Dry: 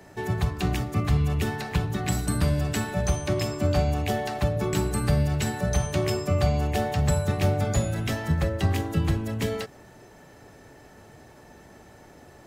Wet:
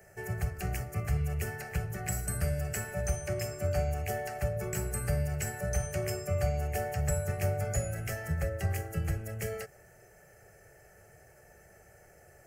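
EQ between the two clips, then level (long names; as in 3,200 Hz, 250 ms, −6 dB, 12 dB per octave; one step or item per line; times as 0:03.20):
high-shelf EQ 5,400 Hz +8 dB
phaser with its sweep stopped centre 1,000 Hz, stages 6
−5.5 dB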